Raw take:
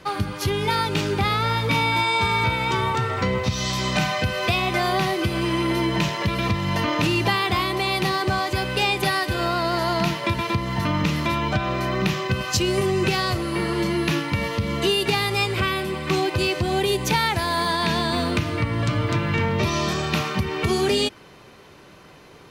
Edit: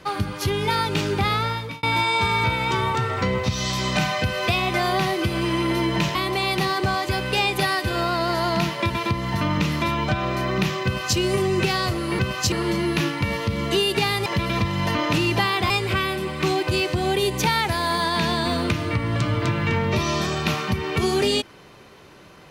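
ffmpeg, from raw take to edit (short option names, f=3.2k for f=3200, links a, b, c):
-filter_complex "[0:a]asplit=7[a][b][c][d][e][f][g];[a]atrim=end=1.83,asetpts=PTS-STARTPTS,afade=t=out:st=1.37:d=0.46[h];[b]atrim=start=1.83:end=6.152,asetpts=PTS-STARTPTS,afade=t=in:d=0.004:c=hsin[i];[c]atrim=start=7.588:end=13.632[j];[d]atrim=start=12.288:end=12.622[k];[e]atrim=start=13.628:end=15.372[l];[f]atrim=start=6.148:end=7.592[m];[g]atrim=start=15.368[n];[h][i]concat=n=2:v=0:a=1[o];[o][j]acrossfade=d=0.004:c1=hsin:c2=hsin[p];[p][k]acrossfade=d=0.004:c1=hsin:c2=hsin[q];[q][l]acrossfade=d=0.004:c1=hsin:c2=hsin[r];[r][m]acrossfade=d=0.004:c1=hsin:c2=hsin[s];[s][n]acrossfade=d=0.004:c1=hsin:c2=hsin"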